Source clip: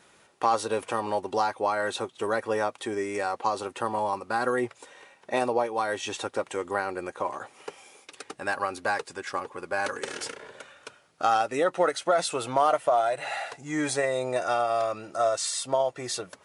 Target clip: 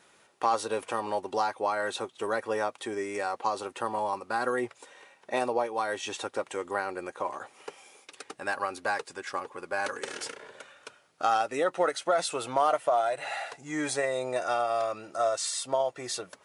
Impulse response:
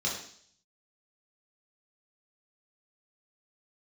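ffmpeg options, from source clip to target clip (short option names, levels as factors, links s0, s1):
-af "lowshelf=f=170:g=-6.5,volume=0.794"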